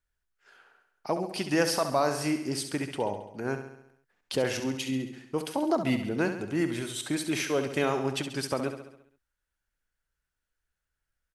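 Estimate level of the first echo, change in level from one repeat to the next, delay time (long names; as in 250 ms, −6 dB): −9.0 dB, −5.0 dB, 68 ms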